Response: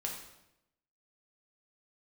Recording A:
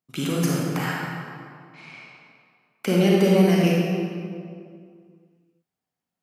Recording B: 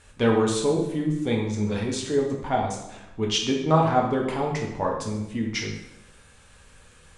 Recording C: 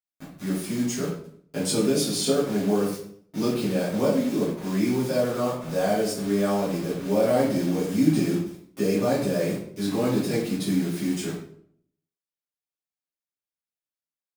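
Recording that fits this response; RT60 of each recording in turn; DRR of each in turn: B; 2.2, 0.85, 0.60 s; -4.0, -1.0, -11.0 dB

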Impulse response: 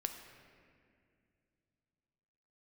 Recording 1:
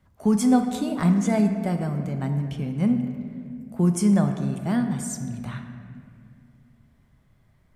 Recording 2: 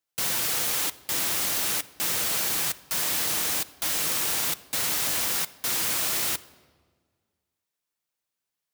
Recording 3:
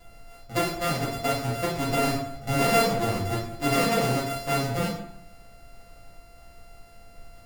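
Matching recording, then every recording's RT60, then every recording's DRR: 1; 2.3, 1.7, 0.65 s; 5.0, 12.5, -7.0 dB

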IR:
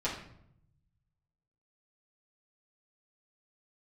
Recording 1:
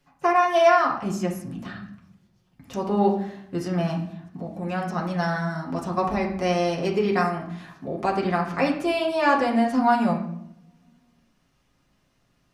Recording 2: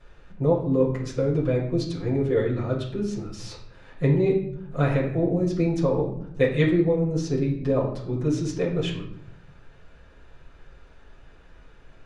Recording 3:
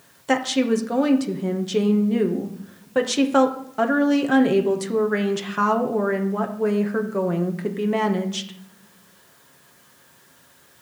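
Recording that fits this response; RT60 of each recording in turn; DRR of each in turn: 2; 0.70, 0.70, 0.75 s; -3.0, -8.5, 3.5 dB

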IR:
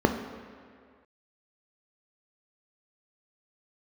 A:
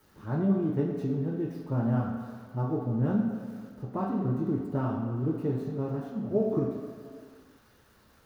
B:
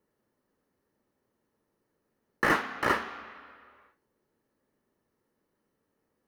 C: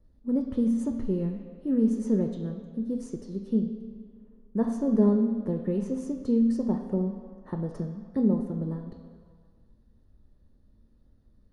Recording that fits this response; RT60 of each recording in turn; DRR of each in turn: C; 2.0, 2.0, 2.0 s; -1.5, 9.0, 5.0 dB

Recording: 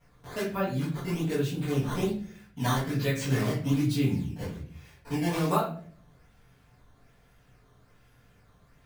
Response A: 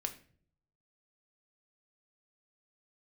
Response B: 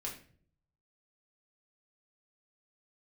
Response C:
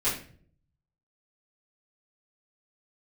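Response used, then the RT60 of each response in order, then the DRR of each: C; 0.50, 0.50, 0.50 s; 5.5, -2.5, -12.0 dB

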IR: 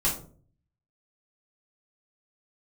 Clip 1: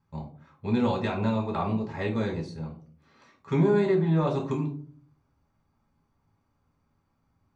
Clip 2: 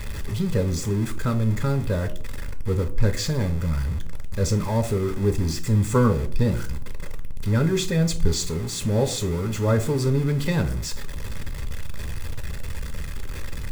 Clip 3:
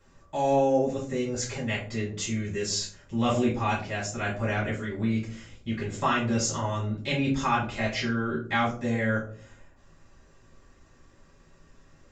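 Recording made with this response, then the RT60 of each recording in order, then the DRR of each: 3; 0.45, 0.45, 0.45 s; -0.5, 8.0, -7.0 dB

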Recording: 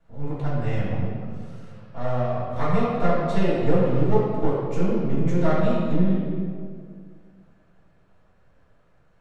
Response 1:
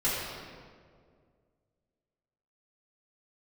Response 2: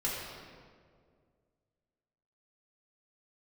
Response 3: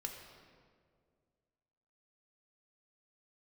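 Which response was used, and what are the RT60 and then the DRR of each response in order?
1; 2.0, 2.0, 2.0 s; -11.5, -7.0, 2.0 dB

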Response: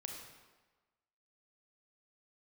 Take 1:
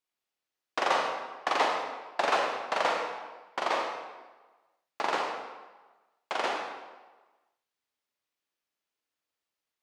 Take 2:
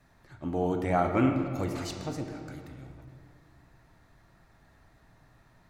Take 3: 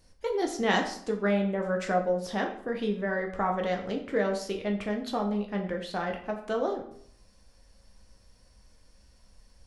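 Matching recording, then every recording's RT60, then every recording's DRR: 1; 1.3, 2.3, 0.65 s; 1.5, 3.0, 1.5 dB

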